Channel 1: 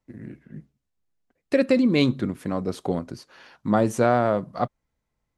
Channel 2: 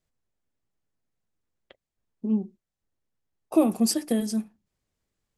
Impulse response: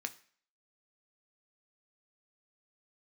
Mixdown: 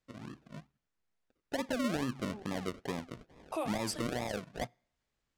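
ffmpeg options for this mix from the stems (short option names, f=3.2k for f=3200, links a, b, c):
-filter_complex "[0:a]acrusher=samples=42:mix=1:aa=0.000001:lfo=1:lforange=25.2:lforate=2.3,volume=-8dB,asplit=3[a][b][c];[b]volume=-13.5dB[d];[1:a]highpass=910,volume=1.5dB[e];[c]apad=whole_len=236941[f];[e][f]sidechaincompress=threshold=-32dB:ratio=8:attack=16:release=119[g];[2:a]atrim=start_sample=2205[h];[d][h]afir=irnorm=-1:irlink=0[i];[a][g][i]amix=inputs=3:normalize=0,adynamicsmooth=sensitivity=5.5:basefreq=6.8k,alimiter=level_in=1dB:limit=-24dB:level=0:latency=1:release=381,volume=-1dB"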